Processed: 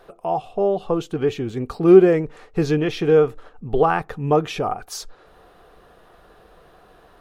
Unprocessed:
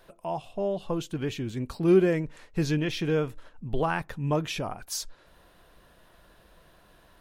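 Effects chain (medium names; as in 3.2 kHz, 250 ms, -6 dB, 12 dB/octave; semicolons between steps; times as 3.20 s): treble shelf 5.8 kHz -6 dB; small resonant body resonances 440/750/1200 Hz, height 11 dB, ringing for 25 ms; trim +3.5 dB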